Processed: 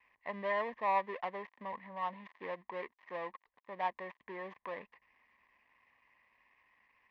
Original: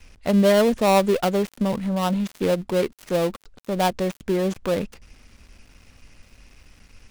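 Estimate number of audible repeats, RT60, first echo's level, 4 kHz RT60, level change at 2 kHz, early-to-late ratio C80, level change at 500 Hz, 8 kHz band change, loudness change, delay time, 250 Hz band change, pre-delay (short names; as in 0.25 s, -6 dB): none, none, none, none, -10.0 dB, none, -20.0 dB, under -40 dB, -17.5 dB, none, -29.0 dB, none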